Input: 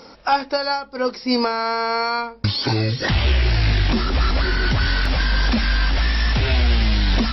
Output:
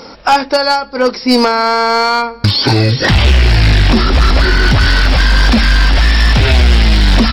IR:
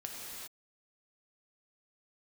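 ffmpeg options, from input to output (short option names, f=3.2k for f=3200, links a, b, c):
-filter_complex "[0:a]asplit=2[a][b];[b]adelay=279.9,volume=-27dB,highshelf=f=4k:g=-6.3[c];[a][c]amix=inputs=2:normalize=0,volume=14dB,asoftclip=hard,volume=-14dB,acontrast=49,volume=4.5dB"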